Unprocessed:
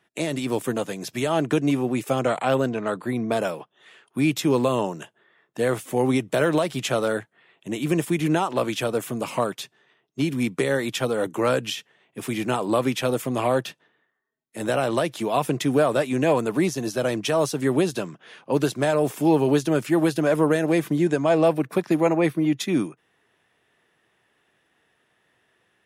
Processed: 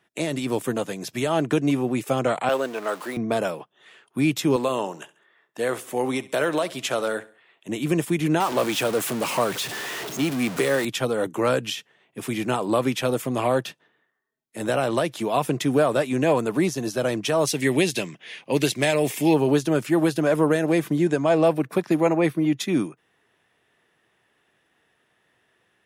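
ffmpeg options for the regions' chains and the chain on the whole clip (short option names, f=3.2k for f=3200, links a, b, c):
-filter_complex "[0:a]asettb=1/sr,asplit=3[a][b][c];[a]atrim=end=2.494[d];[b]atrim=start=2.49:end=3.17,asetpts=PTS-STARTPTS,afade=t=in:d=0.004:c=qsin,afade=t=out:st=0.676:d=0.004:c=qsin,aeval=exprs='val(0)+0.5*0.02*sgn(val(0))':c=same,highpass=430[e];[c]atrim=start=3.166[f];[d][e]acrossfade=d=0.004:c1=hsin:c2=qsin[g];[g][f]acrossfade=d=0.004:c1=qsin:c2=hsin,asettb=1/sr,asplit=3[h][i][j];[h]atrim=end=4.564[k];[i]atrim=start=4.56:end=7.69,asetpts=PTS-STARTPTS,afade=t=in:d=0.004:c=qsin,afade=t=out:st=3.126:d=0.004:c=qsin,highpass=f=400:p=1,aecho=1:1:68|136|204:0.119|0.044|0.0163,atrim=end_sample=138033[l];[j]atrim=start=7.686[m];[k][l]acrossfade=d=0.004:c1=hsin:c2=qsin[n];[n][m]acrossfade=d=0.004:c1=qsin:c2=hsin,asettb=1/sr,asplit=3[o][p][q];[o]atrim=end=8.404[r];[p]atrim=start=8.4:end=10.85,asetpts=PTS-STARTPTS,afade=t=in:d=0.004:c=qsin,afade=t=out:st=2.446:d=0.004:c=qsin,aeval=exprs='val(0)+0.5*0.0531*sgn(val(0))':c=same,highpass=f=220:p=1[s];[q]atrim=start=10.846[t];[r][s]acrossfade=d=0.004:c1=hsin:c2=qsin[u];[u][t]acrossfade=d=0.004:c1=qsin:c2=hsin,asettb=1/sr,asplit=3[v][w][x];[v]atrim=end=17.474[y];[w]atrim=start=17.47:end=19.34,asetpts=PTS-STARTPTS,afade=t=in:d=0.004:c=qsin,afade=t=out:st=1.866:d=0.004:c=qsin,highshelf=f=1.7k:t=q:w=3:g=6,asoftclip=type=hard:threshold=-9.5dB[z];[x]atrim=start=19.336[aa];[y][z]acrossfade=d=0.004:c1=hsin:c2=qsin[ab];[ab][aa]acrossfade=d=0.004:c1=qsin:c2=hsin"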